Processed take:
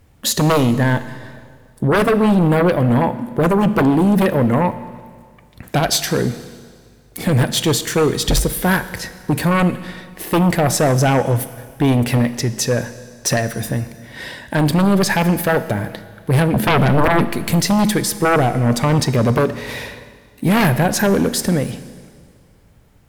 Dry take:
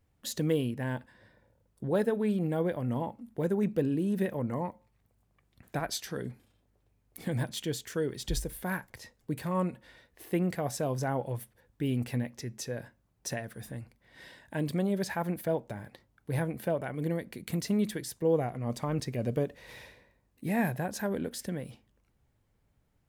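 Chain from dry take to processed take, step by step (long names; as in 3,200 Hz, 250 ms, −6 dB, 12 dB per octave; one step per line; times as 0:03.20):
0:16.53–0:17.25: parametric band 180 Hz +14 dB 2.1 octaves
sine wavefolder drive 16 dB, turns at −10.5 dBFS
four-comb reverb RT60 1.9 s, combs from 26 ms, DRR 13 dB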